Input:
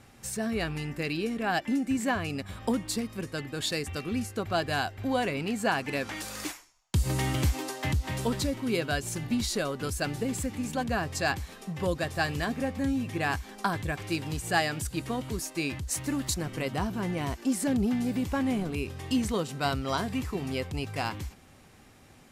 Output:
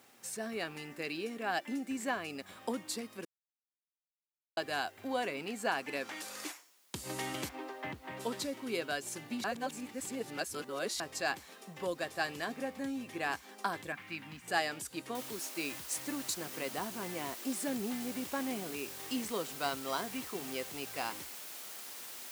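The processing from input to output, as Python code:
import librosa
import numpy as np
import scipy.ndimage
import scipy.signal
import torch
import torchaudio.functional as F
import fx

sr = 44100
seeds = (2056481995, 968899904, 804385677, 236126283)

y = fx.lowpass(x, sr, hz=2300.0, slope=12, at=(7.48, 8.19), fade=0.02)
y = fx.curve_eq(y, sr, hz=(140.0, 230.0, 400.0, 1100.0, 2100.0, 8000.0), db=(0, 5, -16, -1, 3, -18), at=(13.92, 14.48))
y = fx.noise_floor_step(y, sr, seeds[0], at_s=15.15, before_db=-62, after_db=-41, tilt_db=0.0)
y = fx.edit(y, sr, fx.silence(start_s=3.25, length_s=1.32),
    fx.reverse_span(start_s=9.44, length_s=1.56), tone=tone)
y = scipy.signal.sosfilt(scipy.signal.butter(2, 300.0, 'highpass', fs=sr, output='sos'), y)
y = F.gain(torch.from_numpy(y), -5.5).numpy()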